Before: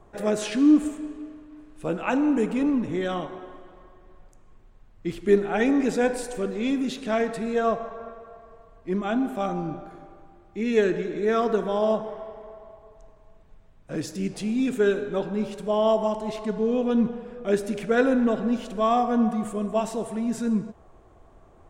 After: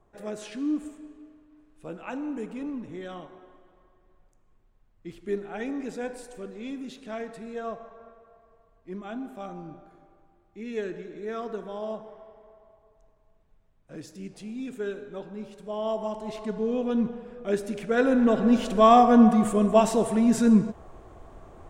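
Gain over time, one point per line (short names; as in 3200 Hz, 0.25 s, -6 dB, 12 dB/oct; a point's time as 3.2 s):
15.55 s -11 dB
16.42 s -3.5 dB
17.88 s -3.5 dB
18.64 s +6 dB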